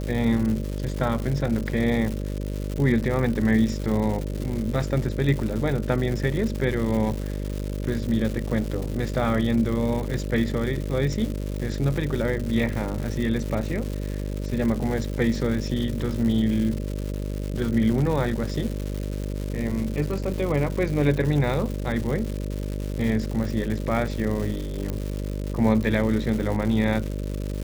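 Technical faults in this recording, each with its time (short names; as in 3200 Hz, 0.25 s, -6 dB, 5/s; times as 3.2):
buzz 50 Hz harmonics 12 -29 dBFS
crackle 260/s -29 dBFS
24.9 pop -16 dBFS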